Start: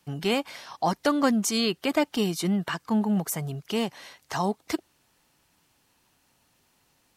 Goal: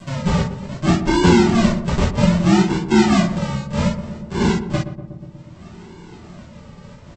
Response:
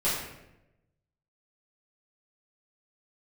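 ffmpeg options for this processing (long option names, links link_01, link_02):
-filter_complex "[0:a]aresample=16000,acrusher=samples=36:mix=1:aa=0.000001:lfo=1:lforange=21.6:lforate=0.63,aresample=44100,highpass=frequency=96:poles=1,asplit=2[link_01][link_02];[link_02]adelay=121,lowpass=frequency=890:poles=1,volume=-9.5dB,asplit=2[link_03][link_04];[link_04]adelay=121,lowpass=frequency=890:poles=1,volume=0.54,asplit=2[link_05][link_06];[link_06]adelay=121,lowpass=frequency=890:poles=1,volume=0.54,asplit=2[link_07][link_08];[link_08]adelay=121,lowpass=frequency=890:poles=1,volume=0.54,asplit=2[link_09][link_10];[link_10]adelay=121,lowpass=frequency=890:poles=1,volume=0.54,asplit=2[link_11][link_12];[link_12]adelay=121,lowpass=frequency=890:poles=1,volume=0.54[link_13];[link_01][link_03][link_05][link_07][link_09][link_11][link_13]amix=inputs=7:normalize=0,acompressor=mode=upward:threshold=-31dB:ratio=2.5[link_14];[1:a]atrim=start_sample=2205,atrim=end_sample=3528[link_15];[link_14][link_15]afir=irnorm=-1:irlink=0"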